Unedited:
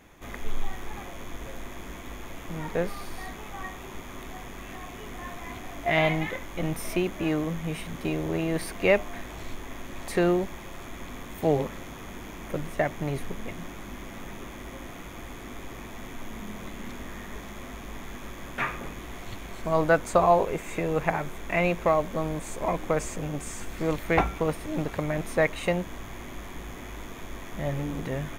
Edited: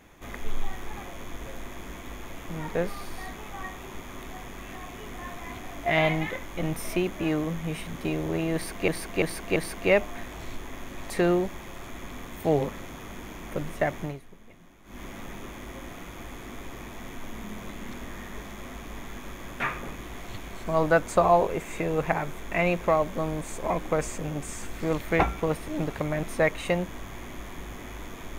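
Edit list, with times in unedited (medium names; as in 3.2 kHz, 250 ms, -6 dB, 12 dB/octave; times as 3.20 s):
8.54–8.88 s: loop, 4 plays
12.99–14.00 s: dip -15.5 dB, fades 0.18 s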